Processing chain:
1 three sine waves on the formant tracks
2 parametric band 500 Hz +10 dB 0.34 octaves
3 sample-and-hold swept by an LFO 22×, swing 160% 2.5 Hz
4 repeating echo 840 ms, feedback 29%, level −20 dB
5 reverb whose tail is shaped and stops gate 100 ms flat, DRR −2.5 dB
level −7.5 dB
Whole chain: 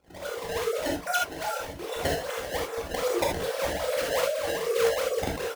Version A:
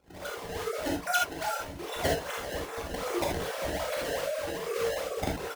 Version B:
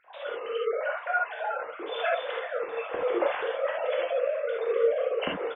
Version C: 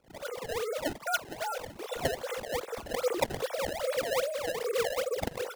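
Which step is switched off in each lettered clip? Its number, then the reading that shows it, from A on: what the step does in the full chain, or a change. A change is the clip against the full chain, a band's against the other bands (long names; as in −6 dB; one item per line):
2, 500 Hz band −3.0 dB
3, change in crest factor −1.5 dB
5, change in momentary loudness spread −1 LU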